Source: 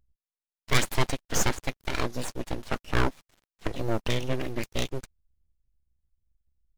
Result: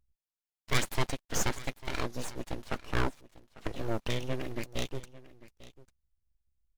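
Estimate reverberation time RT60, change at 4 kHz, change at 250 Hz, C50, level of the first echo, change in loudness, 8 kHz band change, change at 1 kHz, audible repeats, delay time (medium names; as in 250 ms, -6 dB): no reverb, -5.0 dB, -5.0 dB, no reverb, -18.5 dB, -5.0 dB, -5.0 dB, -5.0 dB, 1, 847 ms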